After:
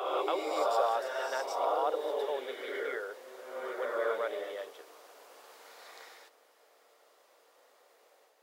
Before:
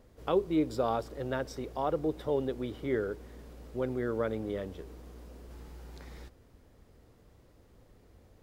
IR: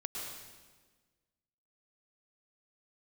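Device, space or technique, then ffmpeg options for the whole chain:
ghost voice: -filter_complex "[0:a]areverse[a];[1:a]atrim=start_sample=2205[b];[a][b]afir=irnorm=-1:irlink=0,areverse,highpass=f=560:w=0.5412,highpass=f=560:w=1.3066,volume=4.5dB"

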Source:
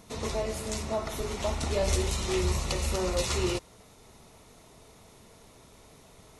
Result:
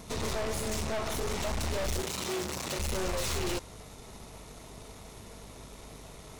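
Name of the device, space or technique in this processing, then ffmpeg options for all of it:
valve amplifier with mains hum: -filter_complex "[0:a]aeval=exprs='(tanh(100*val(0)+0.65)-tanh(0.65))/100':c=same,aeval=exprs='val(0)+0.000891*(sin(2*PI*50*n/s)+sin(2*PI*2*50*n/s)/2+sin(2*PI*3*50*n/s)/3+sin(2*PI*4*50*n/s)/4+sin(2*PI*5*50*n/s)/5)':c=same,asettb=1/sr,asplit=3[a][b][c];[a]atrim=end=2.014[d];[b]atrim=start=2.01:end=2.79,asetpts=PTS-STARTPTS,afade=t=in:d=0.004:c=qsin,afade=t=out:st=0.776:d=0.004:c=qsin,highpass=140[e];[c]atrim=start=2.786[f];[d][e]acrossfade=d=0.004:c1=hsin:c2=qsin[g];[g][f]acrossfade=d=0.004:c1=qsin:c2=hsin,volume=9dB"

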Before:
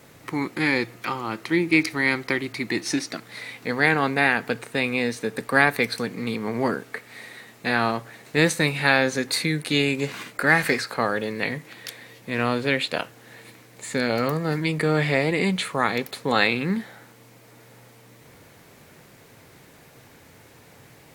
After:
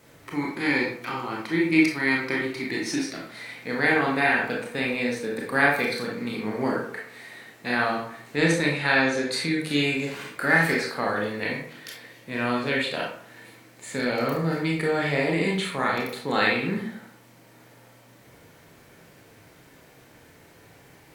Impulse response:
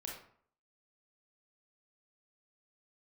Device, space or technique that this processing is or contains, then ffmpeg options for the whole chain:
bathroom: -filter_complex "[1:a]atrim=start_sample=2205[a];[0:a][a]afir=irnorm=-1:irlink=0,asettb=1/sr,asplit=3[b][c][d];[b]atrim=end=8.364[e];[c]atrim=start=8.36:end=9.6,asetpts=PTS-STARTPTS,afade=t=in:d=0.004:c=qsin,afade=t=out:st=1.236:d=0.004:c=qsin,lowpass=9.4k[f];[d]atrim=start=9.596[g];[e][f]acrossfade=d=0.004:c1=hsin:c2=qsin[h];[h][g]acrossfade=d=0.004:c1=qsin:c2=hsin"

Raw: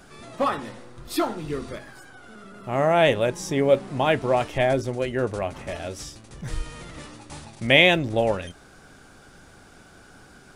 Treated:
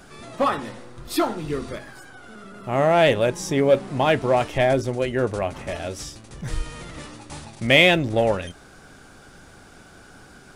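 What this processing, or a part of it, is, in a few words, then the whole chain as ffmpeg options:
parallel distortion: -filter_complex "[0:a]asplit=2[a][b];[b]asoftclip=type=hard:threshold=-17dB,volume=-6dB[c];[a][c]amix=inputs=2:normalize=0,volume=-1dB"

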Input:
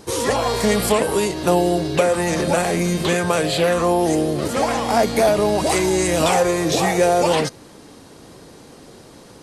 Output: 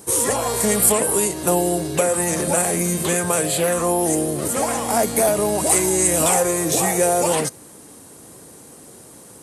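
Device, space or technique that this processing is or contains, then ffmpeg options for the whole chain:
budget condenser microphone: -af "highpass=65,highshelf=f=6.5k:t=q:w=1.5:g=12,volume=-2.5dB"

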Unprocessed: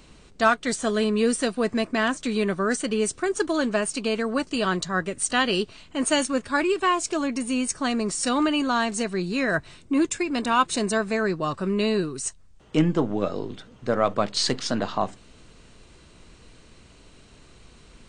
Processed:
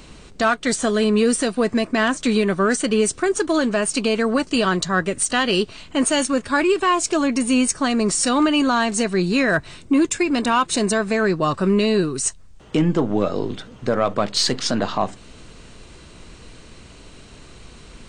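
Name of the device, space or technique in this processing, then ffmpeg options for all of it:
soft clipper into limiter: -af "asoftclip=type=tanh:threshold=-10.5dB,alimiter=limit=-17.5dB:level=0:latency=1:release=230,volume=8dB"

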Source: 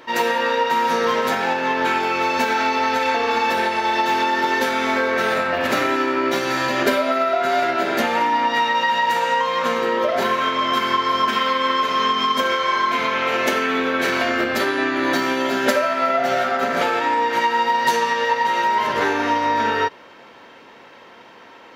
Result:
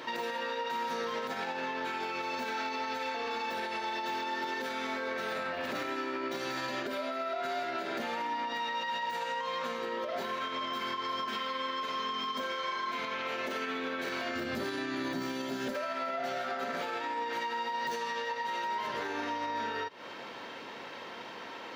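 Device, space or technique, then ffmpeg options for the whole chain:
broadcast voice chain: -filter_complex "[0:a]asettb=1/sr,asplit=3[a][b][c];[a]atrim=end=14.354[d];[b]atrim=start=14.35:end=15.74,asetpts=PTS-STARTPTS,afade=t=in:d=0.004:c=qsin,afade=t=out:st=1.386:d=0.004:c=qsin,bass=f=250:g=11,treble=f=4k:g=8[e];[c]atrim=start=15.736[f];[d][e]acrossfade=d=0.004:c1=hsin:c2=qsin[g];[g][f]acrossfade=d=0.004:c1=qsin:c2=hsin,highpass=84,deesser=0.65,acompressor=threshold=-25dB:ratio=6,equalizer=f=4.2k:t=o:w=0.9:g=4,alimiter=level_in=2.5dB:limit=-24dB:level=0:latency=1:release=225,volume=-2.5dB"

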